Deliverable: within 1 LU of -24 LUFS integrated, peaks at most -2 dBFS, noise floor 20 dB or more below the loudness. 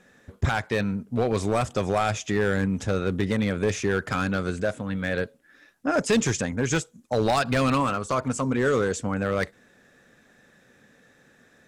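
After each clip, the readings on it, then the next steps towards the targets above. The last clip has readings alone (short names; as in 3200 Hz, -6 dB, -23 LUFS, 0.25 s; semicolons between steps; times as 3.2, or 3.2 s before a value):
clipped 1.0%; flat tops at -16.0 dBFS; loudness -25.5 LUFS; peak -16.0 dBFS; loudness target -24.0 LUFS
-> clip repair -16 dBFS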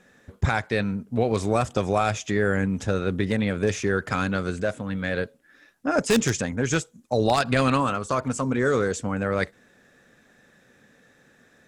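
clipped 0.0%; loudness -25.0 LUFS; peak -7.0 dBFS; loudness target -24.0 LUFS
-> gain +1 dB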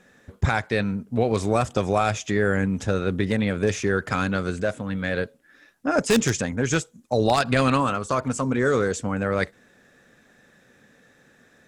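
loudness -24.0 LUFS; peak -6.0 dBFS; noise floor -58 dBFS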